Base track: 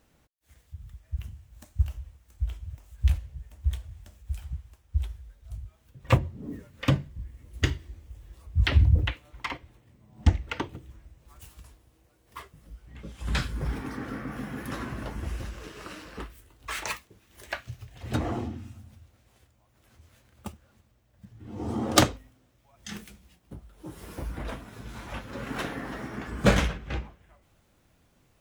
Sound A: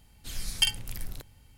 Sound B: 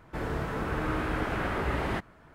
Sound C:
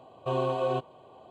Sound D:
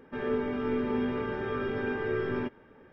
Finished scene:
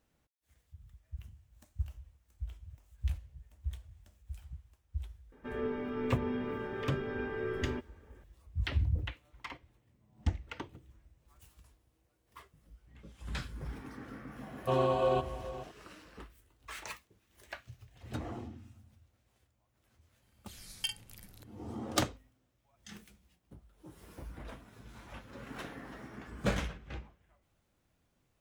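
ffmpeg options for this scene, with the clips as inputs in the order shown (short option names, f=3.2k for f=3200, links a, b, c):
-filter_complex "[0:a]volume=-11dB[a];[3:a]aecho=1:1:425:0.188[b];[1:a]highpass=f=95:p=1[c];[4:a]atrim=end=2.92,asetpts=PTS-STARTPTS,volume=-6dB,afade=t=in:d=0.004:c=hsin,afade=t=out:st=2.916:d=0.004:c=hsin,adelay=5320[d];[b]atrim=end=1.3,asetpts=PTS-STARTPTS,volume=-0.5dB,afade=t=in:d=0.004:c=hsin,afade=t=out:st=1.296:d=0.004:c=hsin,adelay=14410[e];[c]atrim=end=1.57,asetpts=PTS-STARTPTS,volume=-11.5dB,afade=t=in:d=0.004:c=hsin,afade=t=out:st=1.566:d=0.004:c=hsin,adelay=20220[f];[a][d][e][f]amix=inputs=4:normalize=0"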